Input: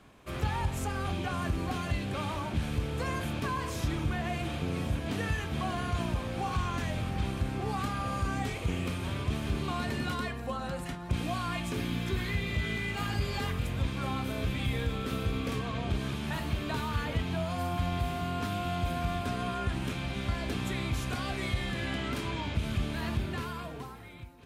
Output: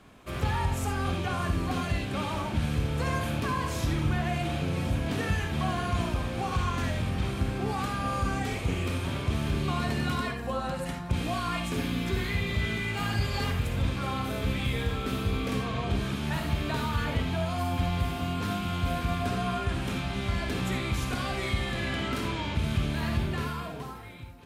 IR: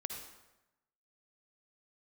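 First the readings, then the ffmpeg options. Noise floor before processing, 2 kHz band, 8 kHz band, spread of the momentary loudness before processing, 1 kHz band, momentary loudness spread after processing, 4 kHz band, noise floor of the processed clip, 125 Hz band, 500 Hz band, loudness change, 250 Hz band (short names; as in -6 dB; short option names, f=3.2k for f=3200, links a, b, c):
-40 dBFS, +3.0 dB, +3.0 dB, 2 LU, +3.0 dB, 2 LU, +3.0 dB, -36 dBFS, +3.5 dB, +3.0 dB, +3.0 dB, +3.0 dB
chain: -filter_complex "[1:a]atrim=start_sample=2205,afade=t=out:st=0.15:d=0.01,atrim=end_sample=7056,asetrate=48510,aresample=44100[a];[0:a][a]afir=irnorm=-1:irlink=0,volume=5.5dB"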